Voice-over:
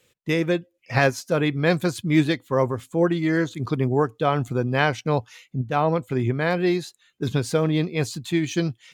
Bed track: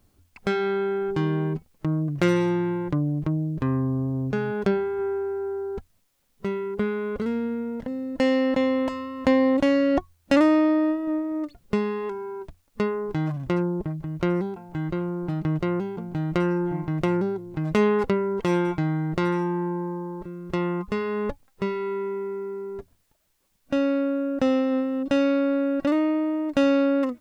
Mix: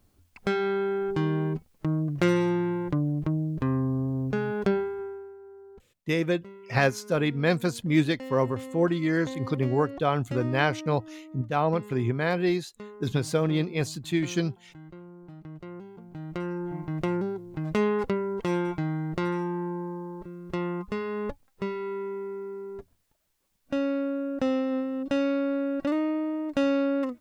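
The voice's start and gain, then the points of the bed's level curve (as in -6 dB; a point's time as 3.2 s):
5.80 s, -3.5 dB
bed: 4.79 s -2 dB
5.38 s -18 dB
15.49 s -18 dB
16.97 s -4.5 dB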